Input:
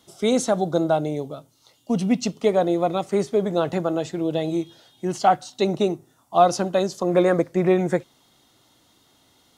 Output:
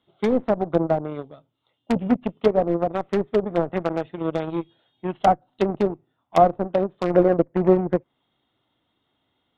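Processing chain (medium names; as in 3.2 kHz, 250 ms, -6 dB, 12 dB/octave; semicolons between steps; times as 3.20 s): Chebyshev shaper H 4 -31 dB, 7 -18 dB, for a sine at -4 dBFS; resampled via 8 kHz; in parallel at -4 dB: integer overflow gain 17.5 dB; on the sum: low-pass that closes with the level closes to 750 Hz, closed at -19 dBFS; trim +3 dB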